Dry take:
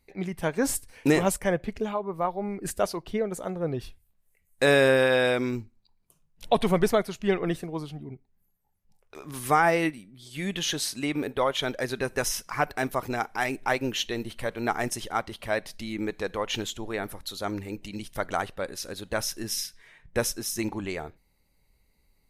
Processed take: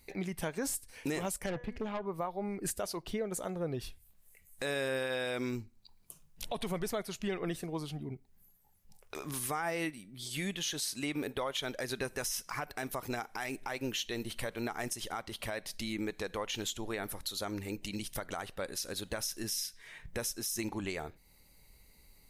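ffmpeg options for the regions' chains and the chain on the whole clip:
-filter_complex "[0:a]asettb=1/sr,asplit=3[a][b][c];[a]atrim=end=1.464[d];[b]atrim=start=1.46:end=2.06,asetpts=PTS-STARTPTS,afade=t=in:d=0.004:c=qsin,afade=t=out:st=0.596:d=0.004:c=qsin,bass=f=250:g=2,treble=f=4k:g=-13,bandreject=f=243.4:t=h:w=4,bandreject=f=486.8:t=h:w=4,bandreject=f=730.2:t=h:w=4,bandreject=f=973.6:t=h:w=4,bandreject=f=1.217k:t=h:w=4,bandreject=f=1.4604k:t=h:w=4,bandreject=f=1.7038k:t=h:w=4,bandreject=f=1.9472k:t=h:w=4,bandreject=f=2.1906k:t=h:w=4,bandreject=f=2.434k:t=h:w=4,bandreject=f=2.6774k:t=h:w=4,bandreject=f=2.9208k:t=h:w=4,bandreject=f=3.1642k:t=h:w=4,bandreject=f=3.4076k:t=h:w=4,bandreject=f=3.651k:t=h:w=4,bandreject=f=3.8944k:t=h:w=4,bandreject=f=4.1378k:t=h:w=4,bandreject=f=4.3812k:t=h:w=4,bandreject=f=4.6246k:t=h:w=4,bandreject=f=4.868k:t=h:w=4,bandreject=f=5.1114k:t=h:w=4,bandreject=f=5.3548k:t=h:w=4,bandreject=f=5.5982k:t=h:w=4,bandreject=f=5.8416k:t=h:w=4,bandreject=f=6.085k:t=h:w=4,bandreject=f=6.3284k:t=h:w=4,bandreject=f=6.5718k:t=h:w=4,aeval=exprs='(tanh(20*val(0)+0.45)-tanh(0.45))/20':c=same[e];[c]atrim=start=2.056[f];[d][e]acrossfade=d=0.004:c1=hsin:c2=qsin[g];[g][f]acrossfade=d=0.004:c1=qsin:c2=hsin,highshelf=f=3.3k:g=7.5,acompressor=threshold=-47dB:ratio=2,alimiter=level_in=6dB:limit=-24dB:level=0:latency=1:release=83,volume=-6dB,volume=5dB"

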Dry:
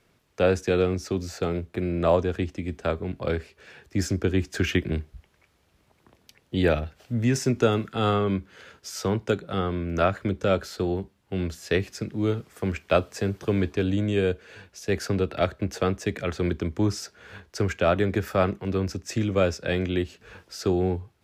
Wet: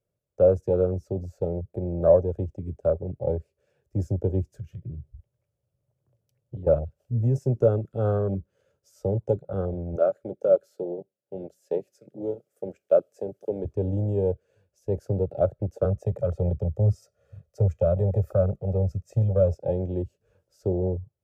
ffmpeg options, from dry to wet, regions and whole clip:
-filter_complex "[0:a]asettb=1/sr,asplit=3[a][b][c];[a]atrim=end=4.514[d];[b]atrim=start=4.51:end=6.67,asetpts=PTS-STARTPTS,afade=t=in:d=0.004:c=qsin,afade=t=out:st=2.156:d=0.004:c=qsin,equalizer=f=120:w=2.9:g=13.5,acompressor=threshold=-31dB:ratio=16:attack=3.2:release=140:knee=1:detection=peak[e];[c]atrim=start=6.666[f];[d][e]acrossfade=d=0.004:c1=hsin:c2=qsin[g];[g][f]acrossfade=d=0.004:c1=qsin:c2=hsin,asettb=1/sr,asplit=3[h][i][j];[h]atrim=end=9.964[k];[i]atrim=start=9.96:end=13.65,asetpts=PTS-STARTPTS,afade=t=in:d=0.004:c=qsin,afade=t=out:st=3.686:d=0.004:c=qsin,highpass=290,equalizer=f=1k:t=o:w=0.29:g=-14,asoftclip=type=hard:threshold=-11.5dB[l];[j]atrim=start=13.646[m];[k][l]acrossfade=d=0.004:c1=hsin:c2=qsin[n];[n][m]acrossfade=d=0.004:c1=qsin:c2=hsin,asettb=1/sr,asplit=3[o][p][q];[o]atrim=end=15.854[r];[p]atrim=start=15.85:end=19.55,asetpts=PTS-STARTPTS,afade=t=in:d=0.004:c=qsin,afade=t=out:st=3.696:d=0.004:c=qsin,aecho=1:1:1.6:0.88,atrim=end_sample=163170,acrossover=split=350|3000[s][t][u];[t]acompressor=threshold=-25dB:ratio=6:attack=3.2:release=140:knee=2.83:detection=peak[v];[s][v][u]amix=inputs=3:normalize=0[w];[q]atrim=start=19.546[x];[r][w]acrossfade=d=0.004:c1=hsin:c2=qsin[y];[y][x]acrossfade=d=0.004:c1=qsin:c2=hsin,equalizer=f=570:t=o:w=0.22:g=10.5,afwtdn=0.0562,equalizer=f=125:t=o:w=1:g=7,equalizer=f=250:t=o:w=1:g=-8,equalizer=f=500:t=o:w=1:g=4,equalizer=f=1k:t=o:w=1:g=-7,equalizer=f=2k:t=o:w=1:g=-11,equalizer=f=4k:t=o:w=1:g=-10,volume=-2dB"

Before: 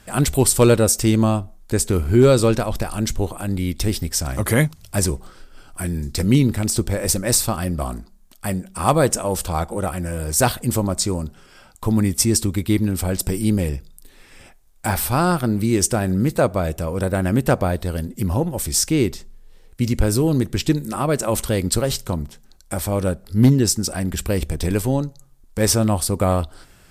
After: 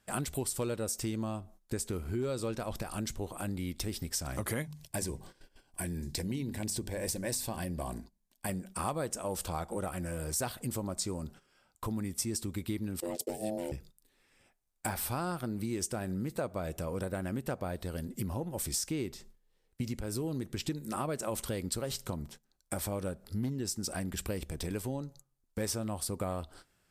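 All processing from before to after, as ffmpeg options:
-filter_complex "[0:a]asettb=1/sr,asplit=3[a][b][c];[a]atrim=end=4.624[d];[b]atrim=start=4.62:end=8.49,asetpts=PTS-STARTPTS,afade=t=in:d=0.004:c=qsin,afade=t=out:st=3.866:d=0.004:c=qsin,bandreject=f=50:t=h:w=6,bandreject=f=100:t=h:w=6,bandreject=f=150:t=h:w=6,bandreject=f=200:t=h:w=6,bandreject=f=250:t=h:w=6,acompressor=threshold=-22dB:ratio=1.5:attack=3.2:release=140:knee=1:detection=peak,asuperstop=centerf=1300:order=4:qfactor=4.4[e];[c]atrim=start=8.486[f];[d][e]acrossfade=d=0.004:c1=hsin:c2=qsin[g];[g][f]acrossfade=d=0.004:c1=qsin:c2=hsin,asettb=1/sr,asplit=3[h][i][j];[h]atrim=end=13.004[k];[i]atrim=start=13:end=13.72,asetpts=PTS-STARTPTS,afade=t=in:d=0.004:c=qsin,afade=t=out:st=0.716:d=0.004:c=qsin,equalizer=f=730:t=o:w=1.7:g=-12,agate=range=-33dB:threshold=-24dB:ratio=3:release=100:detection=peak,aeval=exprs='val(0)*sin(2*PI*430*n/s)':c=same[l];[j]atrim=start=13.716[m];[k][l]acrossfade=d=0.004:c1=hsin:c2=qsin[n];[n][m]acrossfade=d=0.004:c1=qsin:c2=hsin,agate=range=-14dB:threshold=-38dB:ratio=16:detection=peak,acompressor=threshold=-25dB:ratio=6,lowshelf=f=71:g=-9,volume=-6dB"

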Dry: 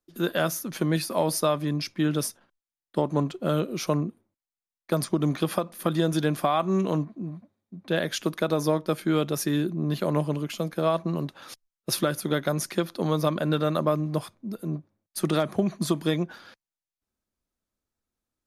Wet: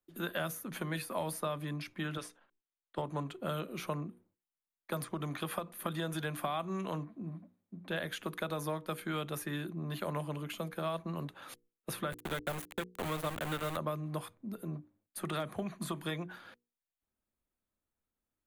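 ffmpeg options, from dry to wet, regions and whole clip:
-filter_complex "[0:a]asettb=1/sr,asplit=3[a][b][c];[a]atrim=end=2.174[d];[b]atrim=start=2.17:end=2.98,asetpts=PTS-STARTPTS,afade=t=in:d=0.004:c=qsin,afade=t=out:st=0.806:d=0.004:c=qsin,lowpass=5.8k,equalizer=f=120:t=o:w=2.9:g=-13.5[e];[c]atrim=start=2.976[f];[d][e]acrossfade=d=0.004:c1=hsin:c2=qsin[g];[g][f]acrossfade=d=0.004:c1=qsin:c2=hsin,asettb=1/sr,asplit=3[h][i][j];[h]atrim=end=12.124[k];[i]atrim=start=12.12:end=13.77,asetpts=PTS-STARTPTS,afade=t=in:d=0.004:c=qsin,afade=t=out:st=1.646:d=0.004:c=qsin,highpass=f=100:w=0.5412,highpass=f=100:w=1.3066,highshelf=f=9.5k:g=-5.5,aeval=exprs='val(0)*gte(abs(val(0)),0.0473)':c=same[l];[j]atrim=start=13.766[m];[k][l]acrossfade=d=0.004:c1=hsin:c2=qsin[n];[n][m]acrossfade=d=0.004:c1=qsin:c2=hsin,acrossover=split=130|730|2600[o][p][q][r];[o]acompressor=threshold=-41dB:ratio=4[s];[p]acompressor=threshold=-38dB:ratio=4[t];[q]acompressor=threshold=-34dB:ratio=4[u];[r]acompressor=threshold=-37dB:ratio=4[v];[s][t][u][v]amix=inputs=4:normalize=0,equalizer=f=5.3k:t=o:w=0.7:g=-12.5,bandreject=f=60:t=h:w=6,bandreject=f=120:t=h:w=6,bandreject=f=180:t=h:w=6,bandreject=f=240:t=h:w=6,bandreject=f=300:t=h:w=6,bandreject=f=360:t=h:w=6,bandreject=f=420:t=h:w=6,bandreject=f=480:t=h:w=6,volume=-3dB"

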